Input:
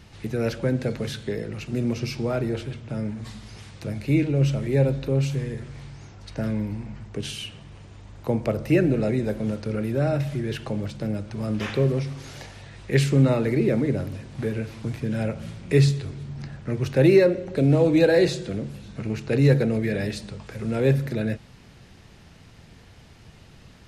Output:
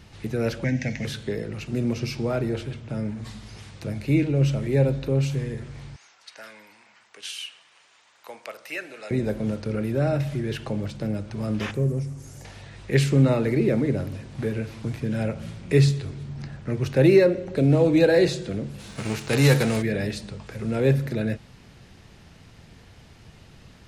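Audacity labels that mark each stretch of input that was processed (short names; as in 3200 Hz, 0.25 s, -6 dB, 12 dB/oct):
0.640000	1.050000	EQ curve 280 Hz 0 dB, 400 Hz -15 dB, 710 Hz +1 dB, 1300 Hz -14 dB, 1900 Hz +13 dB, 4200 Hz -3 dB, 6000 Hz +12 dB, 10000 Hz -17 dB
5.960000	9.110000	HPF 1200 Hz
11.710000	12.450000	EQ curve 120 Hz 0 dB, 4000 Hz -16 dB, 7100 Hz +2 dB
18.780000	19.810000	spectral whitening exponent 0.6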